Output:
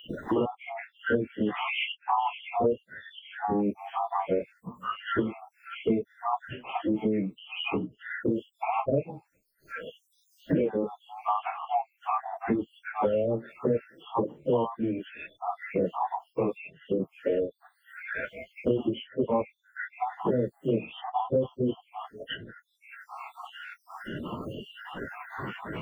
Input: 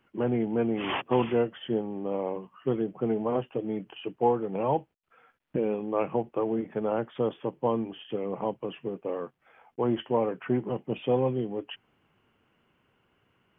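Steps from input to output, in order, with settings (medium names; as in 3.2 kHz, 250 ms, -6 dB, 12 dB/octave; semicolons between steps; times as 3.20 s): random holes in the spectrogram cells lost 70%; plain phase-vocoder stretch 1.9×; three bands compressed up and down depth 100%; trim +8.5 dB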